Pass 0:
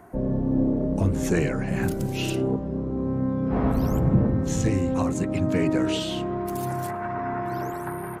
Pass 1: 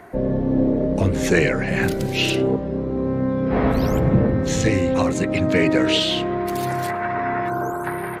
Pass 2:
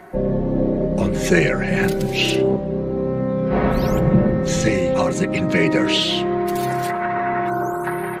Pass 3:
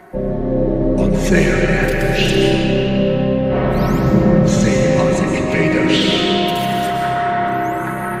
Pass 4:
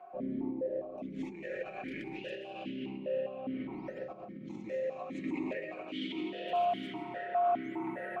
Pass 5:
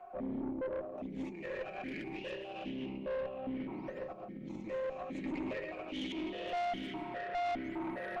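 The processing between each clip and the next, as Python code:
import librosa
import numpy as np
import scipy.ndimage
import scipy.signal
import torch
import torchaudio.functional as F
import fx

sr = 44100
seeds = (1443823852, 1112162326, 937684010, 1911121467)

y1 = fx.spec_box(x, sr, start_s=7.5, length_s=0.34, low_hz=1600.0, high_hz=6000.0, gain_db=-19)
y1 = fx.graphic_eq(y1, sr, hz=(500, 2000, 4000), db=(6, 9, 9))
y1 = y1 * 10.0 ** (2.0 / 20.0)
y2 = y1 + 0.61 * np.pad(y1, (int(5.4 * sr / 1000.0), 0))[:len(y1)]
y3 = fx.rev_freeverb(y2, sr, rt60_s=4.6, hf_ratio=0.6, predelay_ms=90, drr_db=-1.5)
y4 = fx.over_compress(y3, sr, threshold_db=-19.0, ratio=-1.0)
y4 = fx.vowel_held(y4, sr, hz=4.9)
y4 = y4 * 10.0 ** (-8.0 / 20.0)
y5 = fx.tube_stage(y4, sr, drive_db=34.0, bias=0.4)
y5 = y5 * 10.0 ** (1.5 / 20.0)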